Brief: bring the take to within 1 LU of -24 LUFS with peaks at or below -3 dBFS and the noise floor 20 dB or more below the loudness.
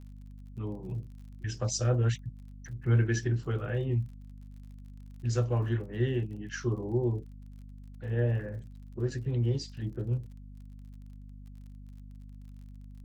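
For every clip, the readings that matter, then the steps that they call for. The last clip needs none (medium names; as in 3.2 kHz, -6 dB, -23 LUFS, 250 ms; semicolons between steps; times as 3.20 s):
tick rate 42 per s; hum 50 Hz; highest harmonic 250 Hz; hum level -44 dBFS; loudness -32.0 LUFS; peak level -15.5 dBFS; loudness target -24.0 LUFS
-> de-click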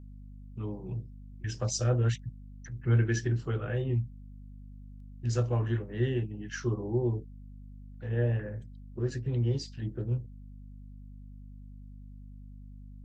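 tick rate 0.077 per s; hum 50 Hz; highest harmonic 250 Hz; hum level -44 dBFS
-> hum notches 50/100/150/200/250 Hz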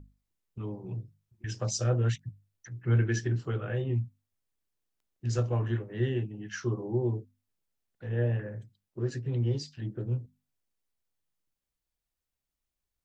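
hum not found; loudness -32.0 LUFS; peak level -16.0 dBFS; loudness target -24.0 LUFS
-> trim +8 dB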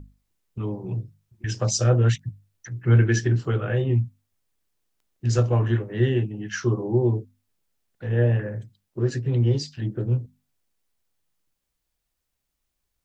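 loudness -24.0 LUFS; peak level -8.0 dBFS; noise floor -79 dBFS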